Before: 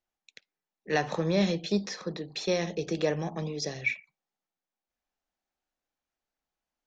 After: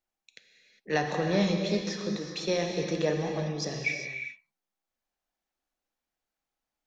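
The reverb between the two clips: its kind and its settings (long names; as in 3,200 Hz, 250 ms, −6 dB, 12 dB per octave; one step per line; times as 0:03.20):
reverb whose tail is shaped and stops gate 430 ms flat, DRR 3 dB
level −1 dB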